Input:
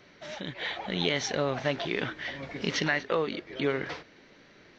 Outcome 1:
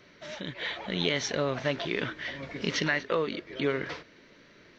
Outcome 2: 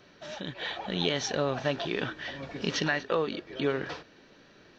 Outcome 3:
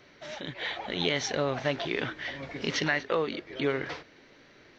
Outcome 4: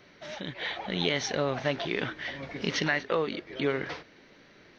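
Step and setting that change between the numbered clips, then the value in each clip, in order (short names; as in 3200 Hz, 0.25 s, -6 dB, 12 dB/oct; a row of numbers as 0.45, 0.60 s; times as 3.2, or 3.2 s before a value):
notch, frequency: 780, 2100, 190, 7300 Hz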